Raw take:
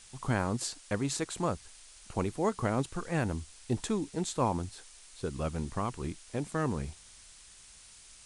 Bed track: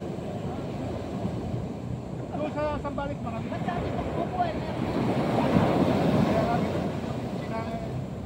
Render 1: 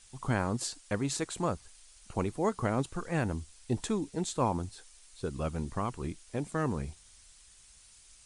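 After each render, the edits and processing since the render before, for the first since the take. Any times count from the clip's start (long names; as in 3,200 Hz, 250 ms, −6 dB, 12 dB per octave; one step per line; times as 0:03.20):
broadband denoise 6 dB, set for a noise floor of −55 dBFS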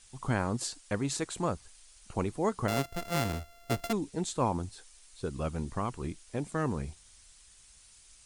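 0:02.68–0:03.93: samples sorted by size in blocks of 64 samples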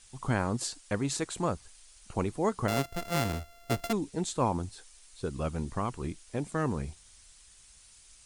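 level +1 dB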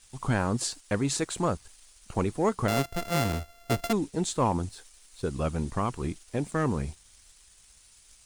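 leveller curve on the samples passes 1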